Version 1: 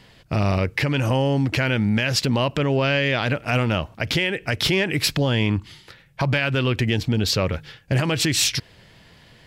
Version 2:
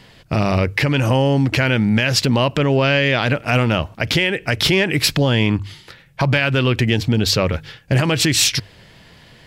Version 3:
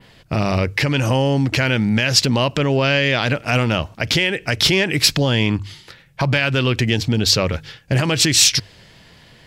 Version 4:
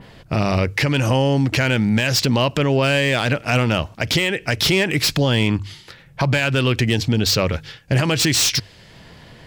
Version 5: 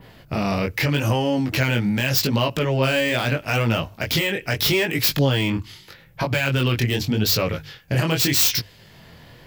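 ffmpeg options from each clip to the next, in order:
ffmpeg -i in.wav -af "bandreject=frequency=50:width_type=h:width=6,bandreject=frequency=100:width_type=h:width=6,volume=4.5dB" out.wav
ffmpeg -i in.wav -af "adynamicequalizer=threshold=0.02:dfrequency=5900:dqfactor=0.88:tfrequency=5900:tqfactor=0.88:attack=5:release=100:ratio=0.375:range=3:mode=boostabove:tftype=bell,volume=-1.5dB" out.wav
ffmpeg -i in.wav -filter_complex "[0:a]acrossover=split=1500[link_01][link_02];[link_01]acompressor=mode=upward:threshold=-36dB:ratio=2.5[link_03];[link_02]asoftclip=type=hard:threshold=-15dB[link_04];[link_03][link_04]amix=inputs=2:normalize=0" out.wav
ffmpeg -i in.wav -filter_complex "[0:a]acrossover=split=800|2600[link_01][link_02][link_03];[link_03]aexciter=amount=3:drive=8.7:freq=12000[link_04];[link_01][link_02][link_04]amix=inputs=3:normalize=0,flanger=delay=17.5:depth=7.9:speed=0.81" out.wav

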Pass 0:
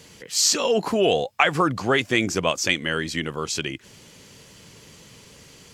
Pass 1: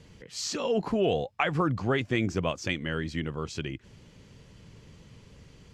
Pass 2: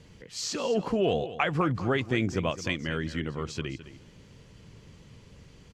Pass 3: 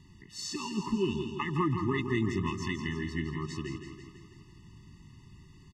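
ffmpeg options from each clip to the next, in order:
ffmpeg -i in.wav -af "aemphasis=mode=reproduction:type=bsi,volume=-8dB" out.wav
ffmpeg -i in.wav -af "aecho=1:1:212|424:0.2|0.0359" out.wav
ffmpeg -i in.wav -af "aecho=1:1:165|330|495|660|825|990|1155:0.398|0.235|0.139|0.0818|0.0482|0.0285|0.0168,afftfilt=real='re*eq(mod(floor(b*sr/1024/430),2),0)':imag='im*eq(mod(floor(b*sr/1024/430),2),0)':win_size=1024:overlap=0.75,volume=-2dB" out.wav

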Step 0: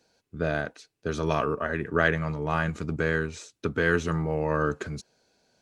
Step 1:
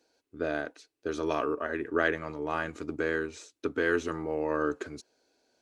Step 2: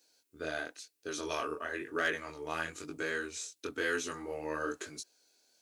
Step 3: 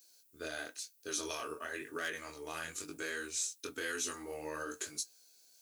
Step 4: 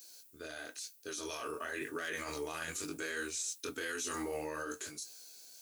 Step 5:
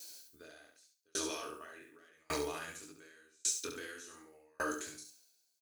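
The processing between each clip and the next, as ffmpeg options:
ffmpeg -i in.wav -af "lowshelf=frequency=230:width_type=q:width=3:gain=-7,volume=-4.5dB" out.wav
ffmpeg -i in.wav -af "crystalizer=i=7.5:c=0,flanger=delay=19:depth=6.4:speed=1,asoftclip=type=hard:threshold=-15.5dB,volume=-6dB" out.wav
ffmpeg -i in.wav -af "flanger=delay=7.1:depth=4:regen=-63:speed=0.55:shape=triangular,alimiter=level_in=6.5dB:limit=-24dB:level=0:latency=1:release=120,volume=-6.5dB,aemphasis=mode=production:type=75kf" out.wav
ffmpeg -i in.wav -af "areverse,acompressor=threshold=-47dB:ratio=6,areverse,alimiter=level_in=19.5dB:limit=-24dB:level=0:latency=1:release=48,volume=-19.5dB,dynaudnorm=framelen=280:gausssize=9:maxgain=5.5dB,volume=9dB" out.wav
ffmpeg -i in.wav -filter_complex "[0:a]asplit=2[link_01][link_02];[link_02]aecho=0:1:69|138|207|276:0.631|0.215|0.0729|0.0248[link_03];[link_01][link_03]amix=inputs=2:normalize=0,aeval=exprs='val(0)*pow(10,-39*if(lt(mod(0.87*n/s,1),2*abs(0.87)/1000),1-mod(0.87*n/s,1)/(2*abs(0.87)/1000),(mod(0.87*n/s,1)-2*abs(0.87)/1000)/(1-2*abs(0.87)/1000))/20)':channel_layout=same,volume=6dB" out.wav

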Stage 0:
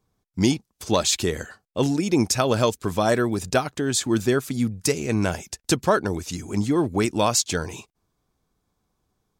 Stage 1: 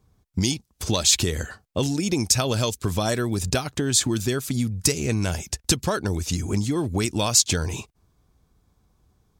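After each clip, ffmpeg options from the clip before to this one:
ffmpeg -i in.wav -filter_complex "[0:a]equalizer=frequency=62:width_type=o:width=2.3:gain=11,acrossover=split=2800[link_01][link_02];[link_01]acompressor=threshold=-26dB:ratio=6[link_03];[link_03][link_02]amix=inputs=2:normalize=0,volume=4.5dB" out.wav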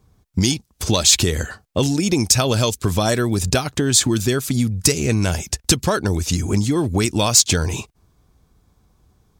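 ffmpeg -i in.wav -af "asoftclip=type=tanh:threshold=-6.5dB,volume=5.5dB" out.wav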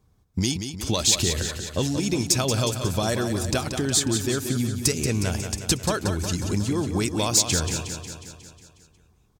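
ffmpeg -i in.wav -af "aecho=1:1:181|362|543|724|905|1086|1267|1448:0.398|0.239|0.143|0.086|0.0516|0.031|0.0186|0.0111,volume=-6.5dB" out.wav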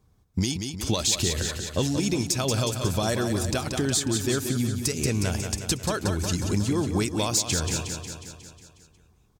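ffmpeg -i in.wav -af "alimiter=limit=-13.5dB:level=0:latency=1:release=193" out.wav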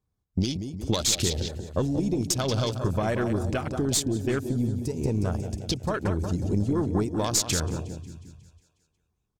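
ffmpeg -i in.wav -af "afwtdn=0.0224,aeval=exprs='0.237*(cos(1*acos(clip(val(0)/0.237,-1,1)))-cos(1*PI/2))+0.0422*(cos(2*acos(clip(val(0)/0.237,-1,1)))-cos(2*PI/2))':channel_layout=same" out.wav

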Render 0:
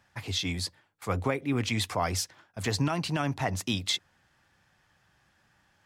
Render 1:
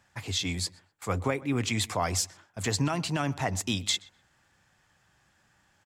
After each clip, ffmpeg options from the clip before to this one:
ffmpeg -i in.wav -filter_complex "[0:a]equalizer=frequency=7400:width=3.2:gain=7.5,asplit=2[link_01][link_02];[link_02]adelay=125,lowpass=frequency=2700:poles=1,volume=-20.5dB,asplit=2[link_03][link_04];[link_04]adelay=125,lowpass=frequency=2700:poles=1,volume=0.23[link_05];[link_01][link_03][link_05]amix=inputs=3:normalize=0" out.wav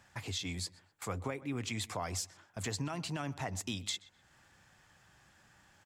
ffmpeg -i in.wav -af "acompressor=threshold=-47dB:ratio=2,volume=2.5dB" out.wav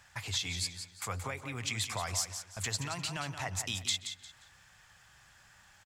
ffmpeg -i in.wav -af "equalizer=frequency=290:width=0.59:gain=-13.5,aecho=1:1:176|352|528:0.355|0.0993|0.0278,volume=5.5dB" out.wav

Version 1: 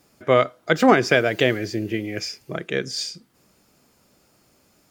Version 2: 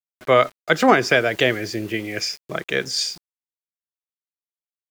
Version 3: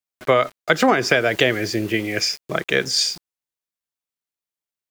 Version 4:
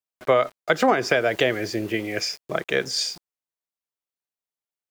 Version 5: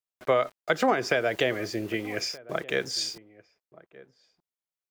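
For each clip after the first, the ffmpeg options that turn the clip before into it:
ffmpeg -i in.wav -filter_complex "[0:a]acrossover=split=570[link_01][link_02];[link_02]dynaudnorm=framelen=110:gausssize=3:maxgain=7dB[link_03];[link_01][link_03]amix=inputs=2:normalize=0,aeval=exprs='val(0)*gte(abs(val(0)),0.0133)':channel_layout=same,volume=-2dB" out.wav
ffmpeg -i in.wav -af "acompressor=threshold=-16dB:ratio=6,volume=4dB" out.wav
ffmpeg -i in.wav -af "equalizer=frequency=660:width_type=o:width=1.8:gain=5,volume=-6dB" out.wav
ffmpeg -i in.wav -filter_complex "[0:a]asplit=2[link_01][link_02];[link_02]adelay=1224,volume=-20dB,highshelf=frequency=4000:gain=-27.6[link_03];[link_01][link_03]amix=inputs=2:normalize=0,volume=-4.5dB" out.wav

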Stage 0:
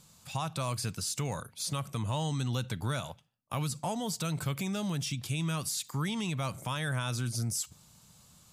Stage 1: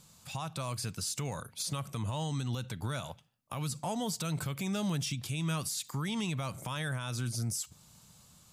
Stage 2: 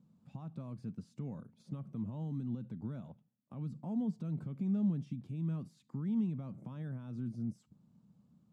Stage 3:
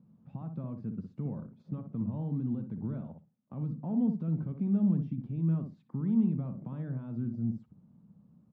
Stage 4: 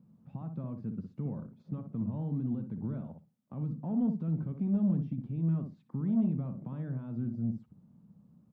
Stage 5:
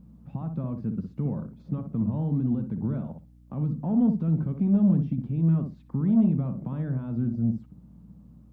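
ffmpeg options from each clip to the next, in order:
ffmpeg -i in.wav -af "dynaudnorm=framelen=260:gausssize=9:maxgain=4.5dB,alimiter=level_in=1.5dB:limit=-24dB:level=0:latency=1:release=393,volume=-1.5dB" out.wav
ffmpeg -i in.wav -af "bandpass=frequency=220:width_type=q:width=2.7:csg=0,volume=3.5dB" out.wav
ffmpeg -i in.wav -filter_complex "[0:a]adynamicsmooth=sensitivity=1.5:basefreq=1900,asplit=2[link_01][link_02];[link_02]adelay=61,lowpass=frequency=1000:poles=1,volume=-6dB,asplit=2[link_03][link_04];[link_04]adelay=61,lowpass=frequency=1000:poles=1,volume=0.16,asplit=2[link_05][link_06];[link_06]adelay=61,lowpass=frequency=1000:poles=1,volume=0.16[link_07];[link_01][link_03][link_05][link_07]amix=inputs=4:normalize=0,volume=5dB" out.wav
ffmpeg -i in.wav -af "asoftclip=type=tanh:threshold=-20dB" out.wav
ffmpeg -i in.wav -af "aeval=exprs='val(0)+0.001*(sin(2*PI*60*n/s)+sin(2*PI*2*60*n/s)/2+sin(2*PI*3*60*n/s)/3+sin(2*PI*4*60*n/s)/4+sin(2*PI*5*60*n/s)/5)':channel_layout=same,volume=7.5dB" out.wav

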